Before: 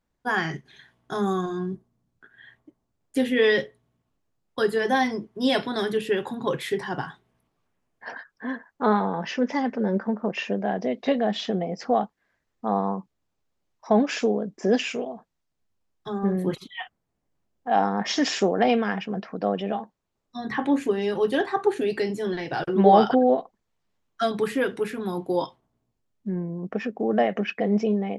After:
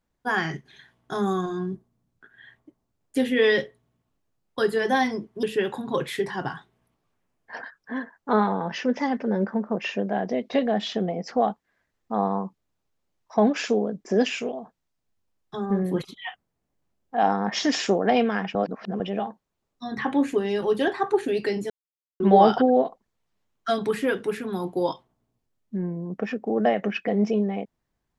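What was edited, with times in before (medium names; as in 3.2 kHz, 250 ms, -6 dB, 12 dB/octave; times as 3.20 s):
5.43–5.96 s: delete
19.08–19.53 s: reverse
22.23–22.73 s: mute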